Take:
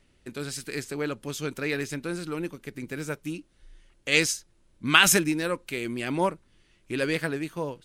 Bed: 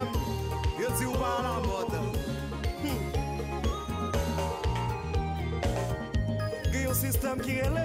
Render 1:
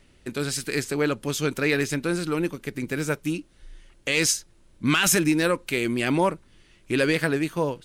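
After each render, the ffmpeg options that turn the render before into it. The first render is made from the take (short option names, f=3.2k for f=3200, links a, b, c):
-af "acontrast=67,alimiter=limit=-11.5dB:level=0:latency=1:release=68"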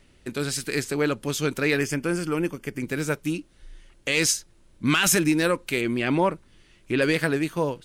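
-filter_complex "[0:a]asettb=1/sr,asplit=3[a][b][c];[a]atrim=end=1.784[d];[b]atrim=start=1.78:end=2.83,asetpts=PTS-STARTPTS,afade=t=in:d=0.004:c=qsin,afade=t=out:st=1.046:d=0.004:c=qsin,asuperstop=centerf=3900:order=4:qfactor=4.1[e];[c]atrim=start=2.826[f];[d][e]acrossfade=d=0.004:c1=hsin:c2=qsin[g];[g][f]acrossfade=d=0.004:c1=qsin:c2=hsin,asettb=1/sr,asplit=3[h][i][j];[h]atrim=end=5.814[k];[i]atrim=start=5.81:end=7.02,asetpts=PTS-STARTPTS,afade=t=in:d=0.004:c=qsin,afade=t=out:st=1.206:d=0.004:c=qsin,acrossover=split=4200[l][m];[m]acompressor=threshold=-51dB:ratio=4:attack=1:release=60[n];[l][n]amix=inputs=2:normalize=0[o];[j]atrim=start=7.016[p];[k][o]acrossfade=d=0.004:c1=hsin:c2=qsin[q];[q][p]acrossfade=d=0.004:c1=qsin:c2=hsin"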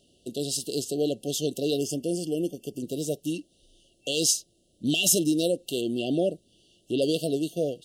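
-af "highpass=f=260:p=1,afftfilt=real='re*(1-between(b*sr/4096,750,2700))':imag='im*(1-between(b*sr/4096,750,2700))':win_size=4096:overlap=0.75"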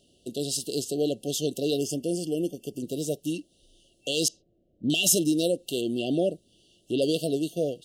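-filter_complex "[0:a]asettb=1/sr,asplit=3[a][b][c];[a]atrim=end=4.284[d];[b]atrim=start=4.28:end=4.9,asetpts=PTS-STARTPTS,afade=t=in:d=0.004:c=qsin,afade=t=out:st=0.616:d=0.004:c=qsin,lowpass=1k[e];[c]atrim=start=4.896[f];[d][e]acrossfade=d=0.004:c1=hsin:c2=qsin[g];[g][f]acrossfade=d=0.004:c1=qsin:c2=hsin"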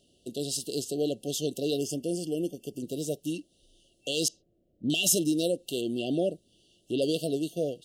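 -af "volume=-2.5dB"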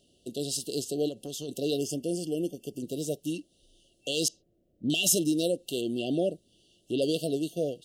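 -filter_complex "[0:a]asplit=3[a][b][c];[a]afade=t=out:st=1.08:d=0.02[d];[b]acompressor=threshold=-33dB:ratio=6:attack=3.2:release=140:knee=1:detection=peak,afade=t=in:st=1.08:d=0.02,afade=t=out:st=1.48:d=0.02[e];[c]afade=t=in:st=1.48:d=0.02[f];[d][e][f]amix=inputs=3:normalize=0"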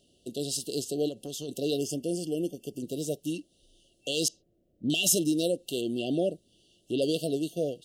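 -af anull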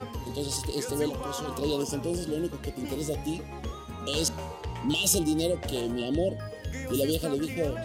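-filter_complex "[1:a]volume=-6.5dB[a];[0:a][a]amix=inputs=2:normalize=0"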